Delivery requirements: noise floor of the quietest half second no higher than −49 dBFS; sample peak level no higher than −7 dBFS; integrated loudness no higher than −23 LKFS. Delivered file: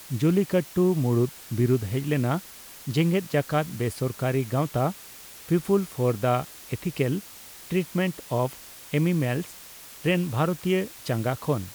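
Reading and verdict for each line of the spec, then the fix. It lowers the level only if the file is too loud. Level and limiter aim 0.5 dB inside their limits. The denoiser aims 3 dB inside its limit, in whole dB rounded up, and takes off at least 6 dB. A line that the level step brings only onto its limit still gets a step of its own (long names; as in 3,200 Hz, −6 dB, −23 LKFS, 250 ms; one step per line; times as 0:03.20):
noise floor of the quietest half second −45 dBFS: out of spec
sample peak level −10.0 dBFS: in spec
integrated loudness −26.0 LKFS: in spec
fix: broadband denoise 7 dB, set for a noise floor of −45 dBFS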